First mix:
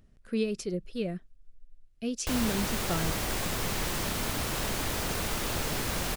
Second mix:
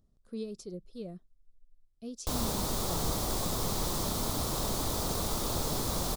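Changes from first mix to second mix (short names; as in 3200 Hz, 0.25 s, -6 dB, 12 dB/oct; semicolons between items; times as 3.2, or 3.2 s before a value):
speech -9.0 dB; master: add band shelf 2100 Hz -12 dB 1.2 oct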